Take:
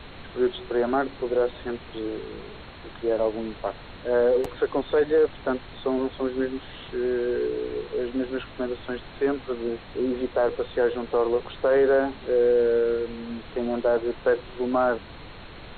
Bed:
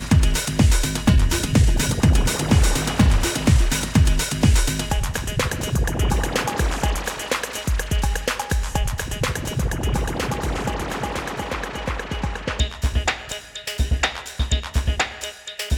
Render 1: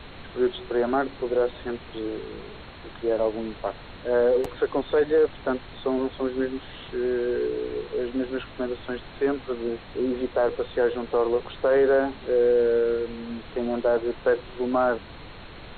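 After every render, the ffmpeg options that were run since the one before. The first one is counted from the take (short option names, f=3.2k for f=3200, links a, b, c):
-af anull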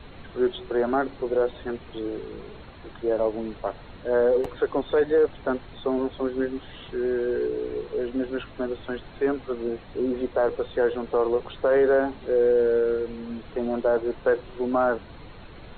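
-af "afftdn=nr=7:nf=-43"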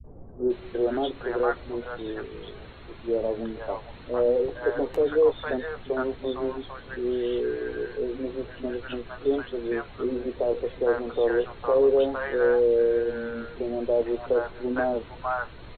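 -filter_complex "[0:a]asplit=2[a][b];[b]adelay=17,volume=-11dB[c];[a][c]amix=inputs=2:normalize=0,acrossover=split=210|760[d][e][f];[e]adelay=40[g];[f]adelay=500[h];[d][g][h]amix=inputs=3:normalize=0"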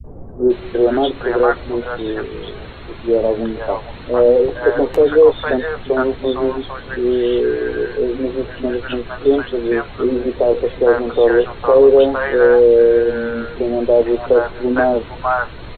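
-af "volume=11dB,alimiter=limit=-2dB:level=0:latency=1"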